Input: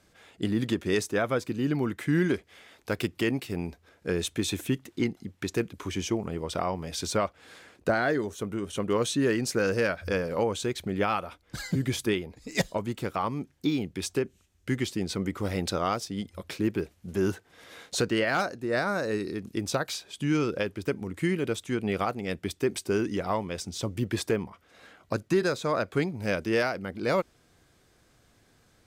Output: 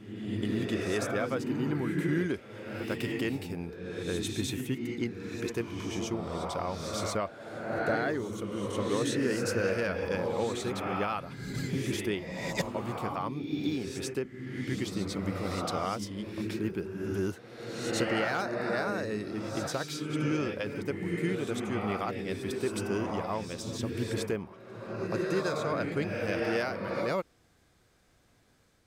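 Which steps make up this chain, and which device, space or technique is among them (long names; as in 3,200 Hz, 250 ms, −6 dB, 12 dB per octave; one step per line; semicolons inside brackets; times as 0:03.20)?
reverse reverb (reversed playback; convolution reverb RT60 1.6 s, pre-delay 83 ms, DRR 0.5 dB; reversed playback)
level −5.5 dB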